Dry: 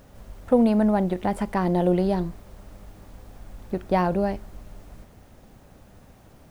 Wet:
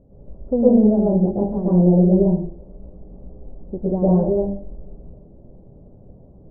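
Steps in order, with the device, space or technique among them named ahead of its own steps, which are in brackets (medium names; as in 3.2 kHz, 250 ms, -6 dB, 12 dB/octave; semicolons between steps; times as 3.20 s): next room (low-pass 560 Hz 24 dB/octave; reverberation RT60 0.55 s, pre-delay 104 ms, DRR -7 dB); trim -1 dB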